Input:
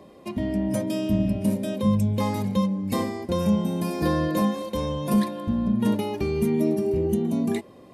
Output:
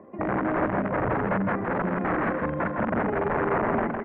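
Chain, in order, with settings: granular stretch 0.51×, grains 86 ms; wrapped overs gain 20.5 dB; steep low-pass 1900 Hz 36 dB/oct; low shelf 98 Hz -11 dB; tapped delay 0.121/0.159/0.373/0.549 s -18.5/-4.5/-19/-14 dB; gain +2 dB

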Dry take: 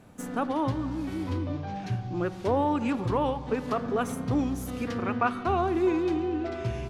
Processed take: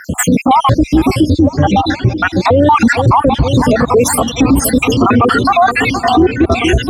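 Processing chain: random spectral dropouts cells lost 67%; HPF 50 Hz 24 dB/oct; reverb removal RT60 1.1 s; 1.82–2.67 LPF 5300 Hz 12 dB/oct; phaser 0.32 Hz, delay 3.8 ms, feedback 48%; darkening echo 0.467 s, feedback 78%, low-pass 1100 Hz, level -19 dB; maximiser +34 dB; gain -1 dB

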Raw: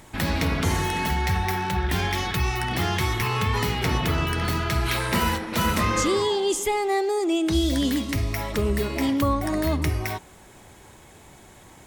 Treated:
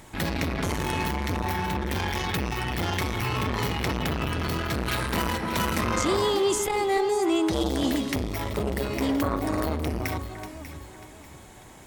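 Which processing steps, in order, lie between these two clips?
echo with dull and thin repeats by turns 0.296 s, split 1700 Hz, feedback 57%, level -8 dB; core saturation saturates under 620 Hz

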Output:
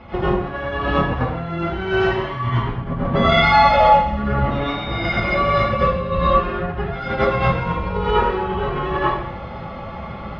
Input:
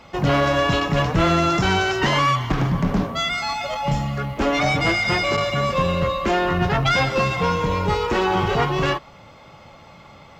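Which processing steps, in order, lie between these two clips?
tone controls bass +5 dB, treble -5 dB; negative-ratio compressor -24 dBFS, ratio -0.5; 4.5–5.04 whine 3700 Hz -35 dBFS; air absorption 300 m; notch comb 150 Hz; plate-style reverb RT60 0.68 s, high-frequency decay 1×, pre-delay 75 ms, DRR -9.5 dB; gain -1 dB

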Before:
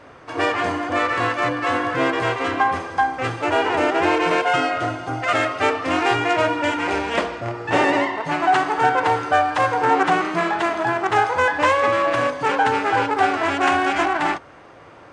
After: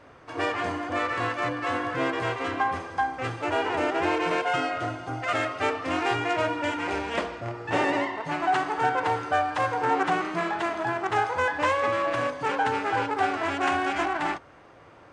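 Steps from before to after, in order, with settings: low shelf 110 Hz +4 dB; gain -7 dB

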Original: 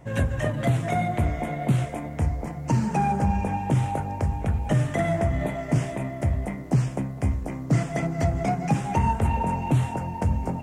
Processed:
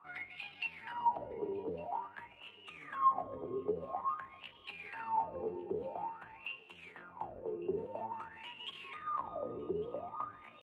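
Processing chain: octaver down 1 oct, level +1 dB; notches 50/100/150/200/250/300/350/400/450/500 Hz; limiter -17.5 dBFS, peak gain reduction 9 dB; pitch shift +5 st; wah 0.49 Hz 400–3000 Hz, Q 12; thinning echo 1.155 s, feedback 50%, high-pass 530 Hz, level -23 dB; gain +4.5 dB

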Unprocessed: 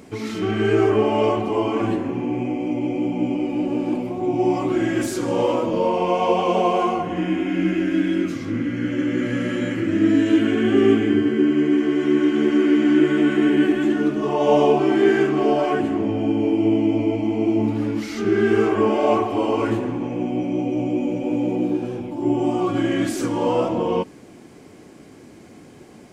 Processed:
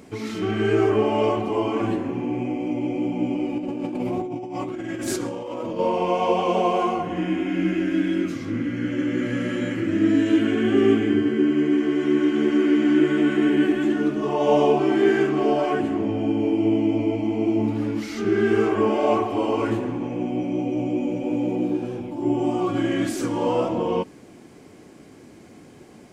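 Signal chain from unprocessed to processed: 3.58–5.79 negative-ratio compressor -27 dBFS, ratio -1; gain -2 dB

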